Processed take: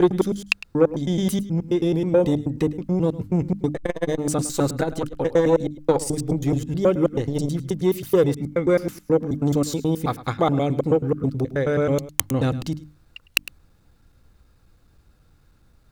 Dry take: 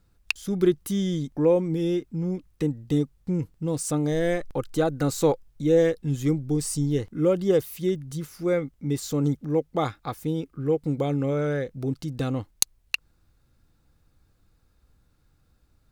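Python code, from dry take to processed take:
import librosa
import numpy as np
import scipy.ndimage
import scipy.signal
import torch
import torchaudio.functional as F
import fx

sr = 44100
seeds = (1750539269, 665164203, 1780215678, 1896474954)

p1 = fx.block_reorder(x, sr, ms=107.0, group=7)
p2 = fx.high_shelf(p1, sr, hz=5300.0, db=-3.5)
p3 = fx.rider(p2, sr, range_db=4, speed_s=0.5)
p4 = p2 + F.gain(torch.from_numpy(p3), -1.0).numpy()
p5 = (np.mod(10.0 ** (1.5 / 20.0) * p4 + 1.0, 2.0) - 1.0) / 10.0 ** (1.5 / 20.0)
p6 = fx.hum_notches(p5, sr, base_hz=50, count=6)
p7 = p6 + fx.echo_single(p6, sr, ms=106, db=-17.5, dry=0)
y = fx.transformer_sat(p7, sr, knee_hz=540.0)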